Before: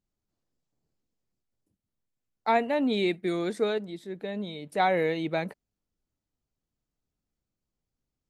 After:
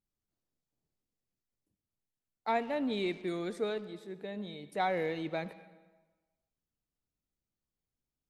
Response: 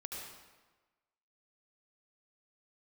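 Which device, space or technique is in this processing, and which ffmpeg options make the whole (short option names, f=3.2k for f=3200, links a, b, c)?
saturated reverb return: -filter_complex "[0:a]asplit=2[a][b];[1:a]atrim=start_sample=2205[c];[b][c]afir=irnorm=-1:irlink=0,asoftclip=type=tanh:threshold=-28.5dB,volume=-8.5dB[d];[a][d]amix=inputs=2:normalize=0,volume=-8dB"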